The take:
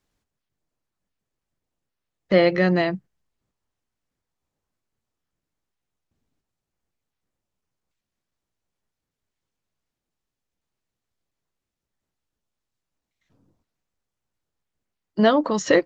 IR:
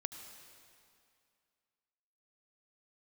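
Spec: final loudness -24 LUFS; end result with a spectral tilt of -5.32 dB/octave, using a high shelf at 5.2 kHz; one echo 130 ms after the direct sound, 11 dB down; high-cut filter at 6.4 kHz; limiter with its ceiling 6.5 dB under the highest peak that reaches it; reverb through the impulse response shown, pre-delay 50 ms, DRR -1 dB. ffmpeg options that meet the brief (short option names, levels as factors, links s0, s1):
-filter_complex "[0:a]lowpass=6400,highshelf=f=5200:g=-4.5,alimiter=limit=0.282:level=0:latency=1,aecho=1:1:130:0.282,asplit=2[s0][s1];[1:a]atrim=start_sample=2205,adelay=50[s2];[s1][s2]afir=irnorm=-1:irlink=0,volume=1.33[s3];[s0][s3]amix=inputs=2:normalize=0,volume=0.562"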